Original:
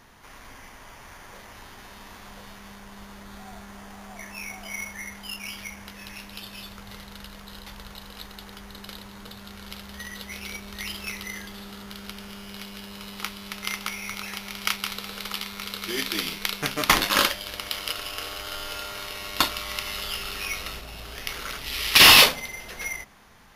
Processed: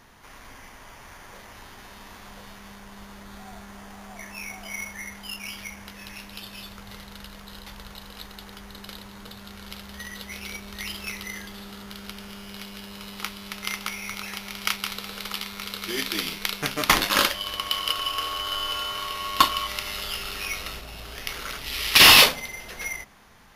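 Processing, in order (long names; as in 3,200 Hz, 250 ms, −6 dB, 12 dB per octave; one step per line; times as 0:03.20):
0:17.34–0:19.67: hollow resonant body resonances 1,100/3,000 Hz, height 15 dB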